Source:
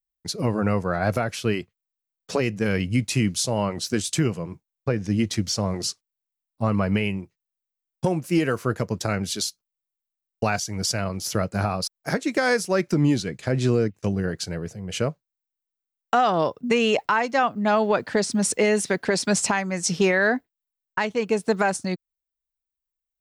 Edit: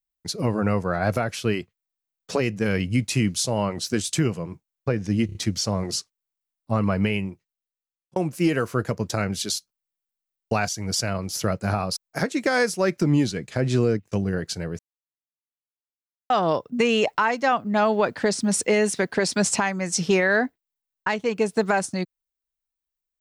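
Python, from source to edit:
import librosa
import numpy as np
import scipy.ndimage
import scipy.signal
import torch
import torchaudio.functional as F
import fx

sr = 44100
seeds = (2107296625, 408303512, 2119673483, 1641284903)

y = fx.edit(x, sr, fx.stutter(start_s=5.26, slice_s=0.03, count=4),
    fx.fade_out_span(start_s=7.16, length_s=0.91),
    fx.silence(start_s=14.7, length_s=1.51), tone=tone)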